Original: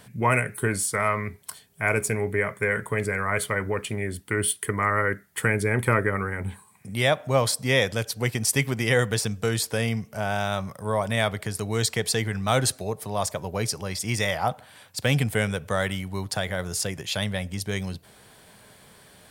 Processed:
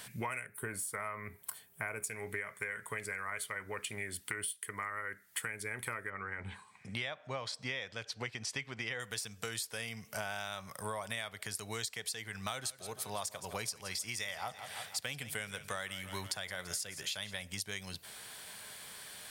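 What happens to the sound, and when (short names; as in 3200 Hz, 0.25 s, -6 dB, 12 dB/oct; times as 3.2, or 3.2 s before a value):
0.46–2.04 bell 4900 Hz -14 dB 2.3 oct
6.1–9 air absorption 140 m
12.44–17.42 feedback echo 0.167 s, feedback 52%, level -16.5 dB
whole clip: tilt shelf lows -8 dB, about 840 Hz; compressor 16:1, threshold -34 dBFS; gain -1.5 dB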